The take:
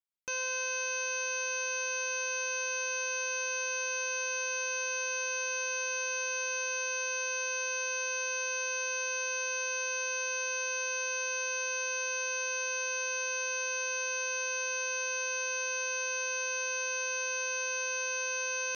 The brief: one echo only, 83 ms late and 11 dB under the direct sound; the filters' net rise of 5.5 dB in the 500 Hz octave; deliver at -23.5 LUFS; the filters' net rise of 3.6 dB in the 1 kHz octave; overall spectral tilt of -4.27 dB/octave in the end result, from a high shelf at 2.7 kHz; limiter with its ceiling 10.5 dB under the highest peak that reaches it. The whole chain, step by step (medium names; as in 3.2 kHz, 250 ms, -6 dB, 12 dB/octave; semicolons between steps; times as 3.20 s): peaking EQ 500 Hz +5 dB; peaking EQ 1 kHz +3.5 dB; treble shelf 2.7 kHz -5.5 dB; peak limiter -36.5 dBFS; delay 83 ms -11 dB; trim +19.5 dB